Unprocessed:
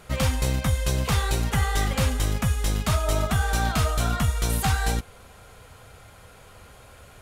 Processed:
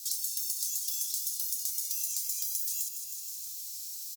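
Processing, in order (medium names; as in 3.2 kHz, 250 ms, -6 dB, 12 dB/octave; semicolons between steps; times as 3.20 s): inverse Chebyshev high-pass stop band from 1 kHz, stop band 60 dB; compression, threshold -37 dBFS, peak gain reduction 8 dB; feedback delay 274 ms, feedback 59%, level -10 dB; speed mistake 45 rpm record played at 78 rpm; three bands compressed up and down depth 70%; trim +8 dB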